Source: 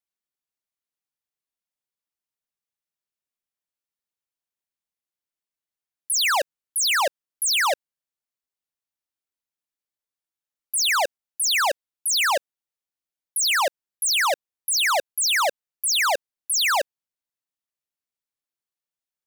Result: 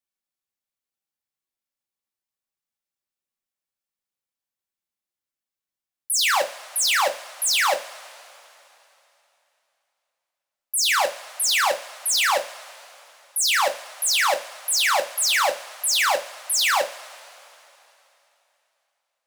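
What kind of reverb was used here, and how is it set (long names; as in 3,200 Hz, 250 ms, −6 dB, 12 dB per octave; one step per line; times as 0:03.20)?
coupled-rooms reverb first 0.27 s, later 3.2 s, from −22 dB, DRR 3 dB
level −1 dB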